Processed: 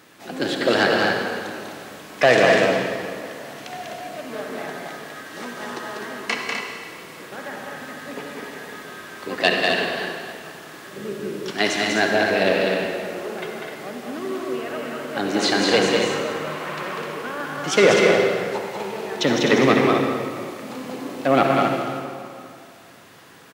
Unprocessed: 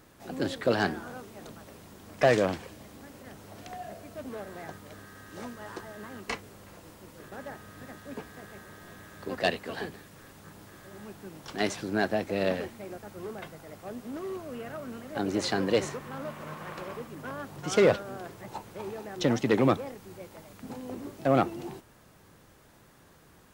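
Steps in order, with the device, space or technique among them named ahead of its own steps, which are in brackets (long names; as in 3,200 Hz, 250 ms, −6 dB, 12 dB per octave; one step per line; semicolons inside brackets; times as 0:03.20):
stadium PA (high-pass filter 160 Hz 12 dB per octave; parametric band 2,800 Hz +7 dB 2.3 octaves; loudspeakers that aren't time-aligned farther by 67 metres −4 dB, 87 metres −7 dB; convolution reverb RT60 2.3 s, pre-delay 50 ms, DRR 2.5 dB)
0:10.96–0:11.51: low shelf with overshoot 600 Hz +6 dB, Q 3
level +4.5 dB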